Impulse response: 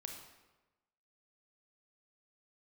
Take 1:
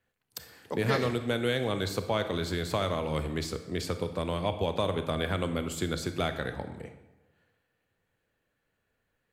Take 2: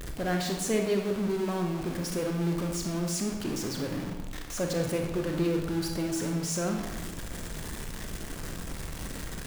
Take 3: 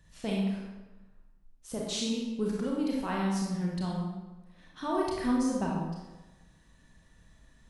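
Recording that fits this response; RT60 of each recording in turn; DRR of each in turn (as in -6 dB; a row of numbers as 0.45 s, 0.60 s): 2; 1.1 s, 1.1 s, 1.1 s; 8.5 dB, 2.5 dB, -3.5 dB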